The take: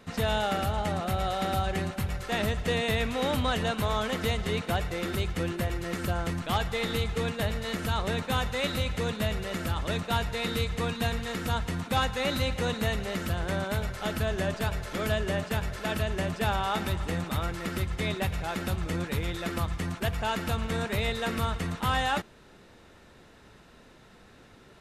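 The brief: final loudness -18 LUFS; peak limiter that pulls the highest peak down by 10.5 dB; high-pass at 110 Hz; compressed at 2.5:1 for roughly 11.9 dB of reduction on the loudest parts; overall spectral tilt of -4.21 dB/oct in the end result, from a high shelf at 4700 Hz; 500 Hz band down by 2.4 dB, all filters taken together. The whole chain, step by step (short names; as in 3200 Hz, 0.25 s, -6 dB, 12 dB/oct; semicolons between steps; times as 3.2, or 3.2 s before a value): HPF 110 Hz; bell 500 Hz -3 dB; high shelf 4700 Hz +4 dB; compressor 2.5:1, threshold -43 dBFS; gain +27.5 dB; limiter -9 dBFS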